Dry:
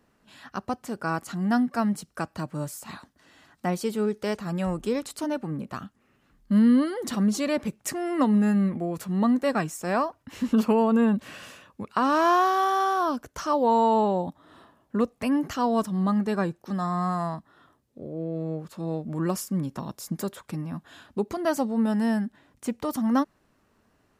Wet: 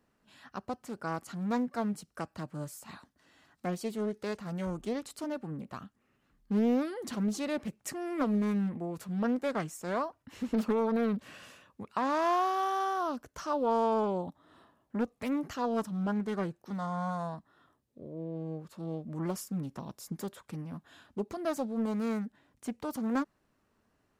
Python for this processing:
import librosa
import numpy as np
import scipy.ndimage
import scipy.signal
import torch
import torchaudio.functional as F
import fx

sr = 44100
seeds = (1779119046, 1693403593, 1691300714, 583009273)

y = fx.doppler_dist(x, sr, depth_ms=0.6)
y = y * librosa.db_to_amplitude(-7.5)